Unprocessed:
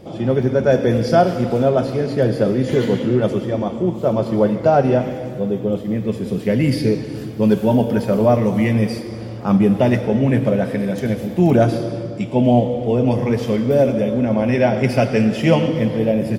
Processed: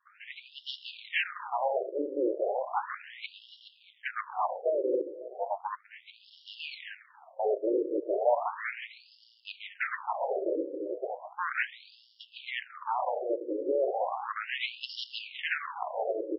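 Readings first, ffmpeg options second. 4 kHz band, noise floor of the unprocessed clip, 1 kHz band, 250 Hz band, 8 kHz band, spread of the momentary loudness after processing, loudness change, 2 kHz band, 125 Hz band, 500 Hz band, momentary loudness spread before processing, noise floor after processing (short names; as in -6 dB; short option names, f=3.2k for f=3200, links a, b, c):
-6.0 dB, -29 dBFS, -9.0 dB, -24.0 dB, n/a, 17 LU, -15.5 dB, -6.0 dB, under -40 dB, -15.0 dB, 7 LU, -62 dBFS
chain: -af "adynamicequalizer=threshold=0.0224:dfrequency=230:dqfactor=3.7:tfrequency=230:tqfactor=3.7:attack=5:release=100:ratio=0.375:range=1.5:mode=cutabove:tftype=bell,aeval=exprs='0.891*(cos(1*acos(clip(val(0)/0.891,-1,1)))-cos(1*PI/2))+0.126*(cos(2*acos(clip(val(0)/0.891,-1,1)))-cos(2*PI/2))+0.141*(cos(3*acos(clip(val(0)/0.891,-1,1)))-cos(3*PI/2))+0.0282*(cos(4*acos(clip(val(0)/0.891,-1,1)))-cos(4*PI/2))+0.251*(cos(8*acos(clip(val(0)/0.891,-1,1)))-cos(8*PI/2))':c=same,afftfilt=real='re*between(b*sr/1024,400*pow(4000/400,0.5+0.5*sin(2*PI*0.35*pts/sr))/1.41,400*pow(4000/400,0.5+0.5*sin(2*PI*0.35*pts/sr))*1.41)':imag='im*between(b*sr/1024,400*pow(4000/400,0.5+0.5*sin(2*PI*0.35*pts/sr))/1.41,400*pow(4000/400,0.5+0.5*sin(2*PI*0.35*pts/sr))*1.41)':win_size=1024:overlap=0.75,volume=-8.5dB"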